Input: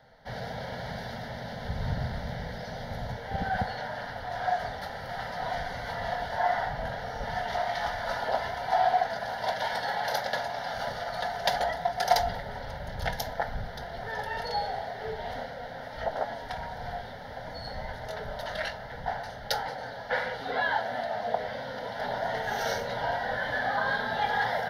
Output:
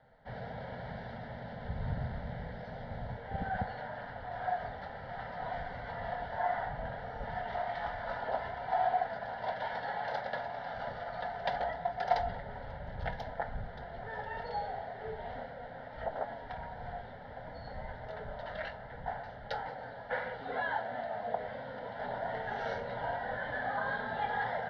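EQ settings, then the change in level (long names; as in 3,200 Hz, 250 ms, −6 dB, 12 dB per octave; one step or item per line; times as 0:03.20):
low-pass filter 11,000 Hz
high-frequency loss of the air 350 metres
−4.5 dB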